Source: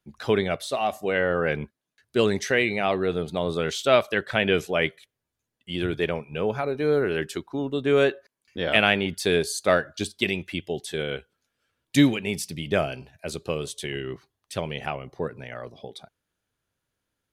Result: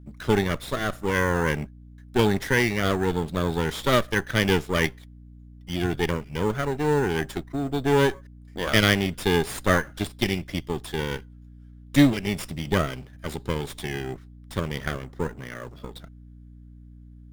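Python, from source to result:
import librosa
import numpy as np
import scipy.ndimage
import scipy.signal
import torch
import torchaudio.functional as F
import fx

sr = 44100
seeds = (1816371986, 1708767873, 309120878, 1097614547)

p1 = fx.lower_of_two(x, sr, delay_ms=0.56)
p2 = fx.sample_hold(p1, sr, seeds[0], rate_hz=7900.0, jitter_pct=0)
p3 = p1 + (p2 * librosa.db_to_amplitude(-5.0))
p4 = fx.add_hum(p3, sr, base_hz=60, snr_db=20)
y = p4 * librosa.db_to_amplitude(-2.5)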